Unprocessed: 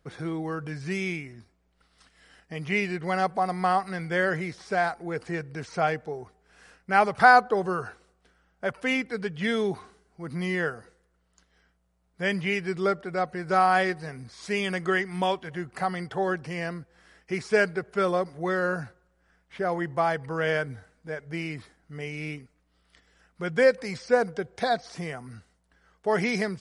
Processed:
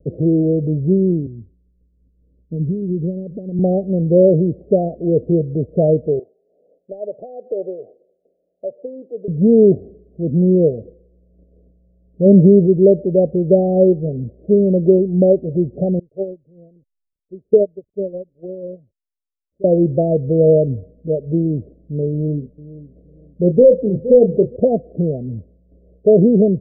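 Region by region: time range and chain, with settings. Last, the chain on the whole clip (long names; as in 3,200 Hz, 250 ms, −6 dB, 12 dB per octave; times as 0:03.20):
0:01.26–0:03.59: downward compressor 5 to 1, threshold −29 dBFS + Gaussian smoothing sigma 20 samples + multiband upward and downward expander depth 40%
0:06.19–0:09.28: high-pass filter 760 Hz + downward compressor 2.5 to 1, threshold −33 dBFS
0:12.25–0:12.65: spectral envelope flattened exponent 0.6 + parametric band 310 Hz +9.5 dB 2.6 octaves
0:15.99–0:19.64: auto-filter low-pass saw up 1.3 Hz 440–3,500 Hz + slack as between gear wheels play −41 dBFS + expander for the loud parts 2.5 to 1, over −32 dBFS
0:22.11–0:24.56: hard clipping −14.5 dBFS + double-tracking delay 28 ms −9 dB + repeating echo 466 ms, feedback 23%, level −16.5 dB
whole clip: Butterworth low-pass 620 Hz 96 dB per octave; boost into a limiter +18 dB; level −1 dB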